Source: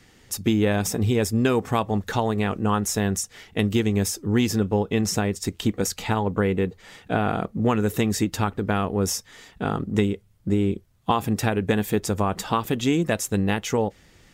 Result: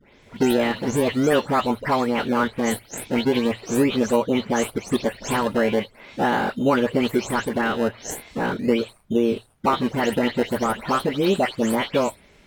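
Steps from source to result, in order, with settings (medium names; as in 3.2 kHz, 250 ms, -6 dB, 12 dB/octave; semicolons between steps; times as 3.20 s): delay that grows with frequency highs late, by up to 258 ms; in parallel at -7.5 dB: decimation with a swept rate 30×, swing 100% 0.36 Hz; on the sum: tone controls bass -6 dB, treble -9 dB; hum notches 50/100 Hz; tape speed +15%; trim +3 dB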